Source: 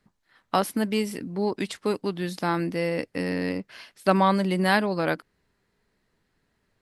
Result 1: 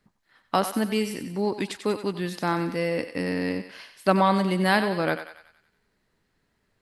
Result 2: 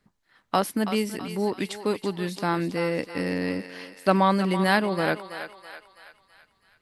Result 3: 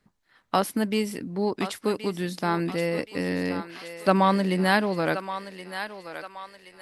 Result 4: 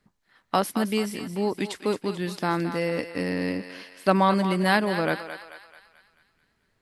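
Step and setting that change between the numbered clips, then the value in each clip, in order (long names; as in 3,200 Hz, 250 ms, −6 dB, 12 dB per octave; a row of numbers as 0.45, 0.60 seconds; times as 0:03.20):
feedback echo with a high-pass in the loop, delay time: 93, 328, 1,074, 218 milliseconds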